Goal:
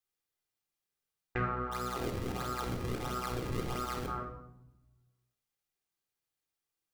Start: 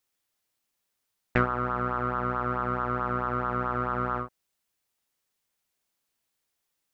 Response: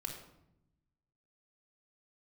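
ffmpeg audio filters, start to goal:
-filter_complex "[0:a]asplit=3[s0][s1][s2];[s0]afade=t=out:st=1.71:d=0.02[s3];[s1]acrusher=samples=34:mix=1:aa=0.000001:lfo=1:lforange=54.4:lforate=1.5,afade=t=in:st=1.71:d=0.02,afade=t=out:st=4.06:d=0.02[s4];[s2]afade=t=in:st=4.06:d=0.02[s5];[s3][s4][s5]amix=inputs=3:normalize=0[s6];[1:a]atrim=start_sample=2205[s7];[s6][s7]afir=irnorm=-1:irlink=0,volume=0.398"

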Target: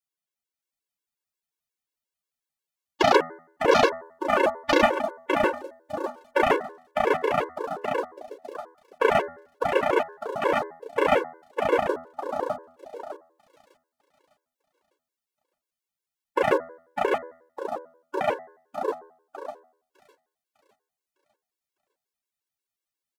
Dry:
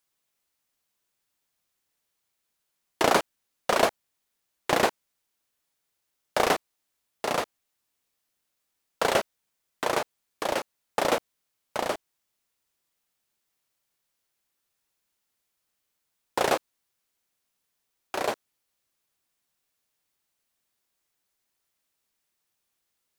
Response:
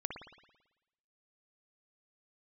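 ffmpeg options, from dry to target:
-filter_complex "[0:a]acontrast=78,asplit=2[s0][s1];[s1]aecho=0:1:604|1208|1812|2416|3020|3624:0.708|0.311|0.137|0.0603|0.0265|0.0117[s2];[s0][s2]amix=inputs=2:normalize=0,adynamicequalizer=threshold=0.0224:dfrequency=430:dqfactor=3.4:tfrequency=430:tqfactor=3.4:attack=5:release=100:ratio=0.375:range=2:mode=boostabove:tftype=bell,afwtdn=0.0447,asettb=1/sr,asplit=3[s3][s4][s5];[s3]atrim=end=3.874[s6];[s4]atrim=start=3.87:end=6.42,asetpts=PTS-STARTPTS,afade=t=in:d=0.004:c=qsin,afade=t=out:st=2.546:d=0.004:c=qsin,aecho=1:1:3.4:0.65,atrim=end_sample=112455[s7];[s5]atrim=start=6.416[s8];[s6][s7]acrossfade=d=0.004:c1=hsin:c2=qsin[s9];[s9][s8]acrossfade=d=0.004:c1=qsin:c2=hsin,bandreject=f=82.23:t=h:w=4,bandreject=f=164.46:t=h:w=4,bandreject=f=246.69:t=h:w=4,bandreject=f=328.92:t=h:w=4,bandreject=f=411.15:t=h:w=4,bandreject=f=493.38:t=h:w=4,bandreject=f=575.61:t=h:w=4,bandreject=f=657.84:t=h:w=4,bandreject=f=740.07:t=h:w=4,bandreject=f=822.3:t=h:w=4,bandreject=f=904.53:t=h:w=4,bandreject=f=986.76:t=h:w=4,bandreject=f=1068.99:t=h:w=4,bandreject=f=1151.22:t=h:w=4,bandreject=f=1233.45:t=h:w=4,bandreject=f=1315.68:t=h:w=4,bandreject=f=1397.91:t=h:w=4,bandreject=f=1480.14:t=h:w=4,bandreject=f=1562.37:t=h:w=4,bandreject=f=1644.6:t=h:w=4,bandreject=f=1726.83:t=h:w=4,bandreject=f=1809.06:t=h:w=4,bandreject=f=1891.29:t=h:w=4,bandreject=f=1973.52:t=h:w=4,bandreject=f=2055.75:t=h:w=4,afftfilt=real='re*gt(sin(2*PI*5.6*pts/sr)*(1-2*mod(floor(b*sr/1024/290),2)),0)':imag='im*gt(sin(2*PI*5.6*pts/sr)*(1-2*mod(floor(b*sr/1024/290),2)),0)':win_size=1024:overlap=0.75"

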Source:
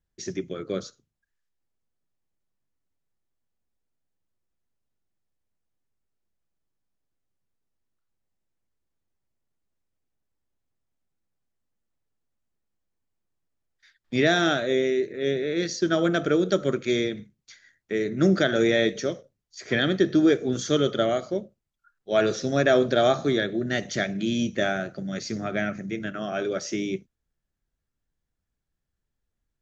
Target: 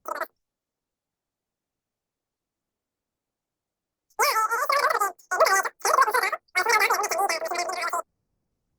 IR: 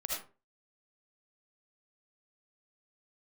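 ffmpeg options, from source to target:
-af "equalizer=f=500:t=o:w=1:g=-3,equalizer=f=1000:t=o:w=1:g=-7,equalizer=f=4000:t=o:w=1:g=-7,asetrate=148617,aresample=44100,volume=1.5" -ar 48000 -c:a libopus -b:a 24k

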